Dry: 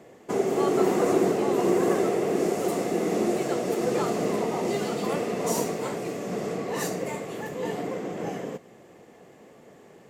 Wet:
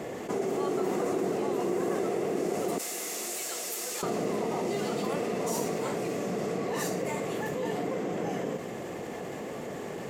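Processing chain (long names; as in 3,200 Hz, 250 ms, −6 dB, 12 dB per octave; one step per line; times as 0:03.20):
0:02.78–0:04.03: first difference
envelope flattener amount 70%
level −9 dB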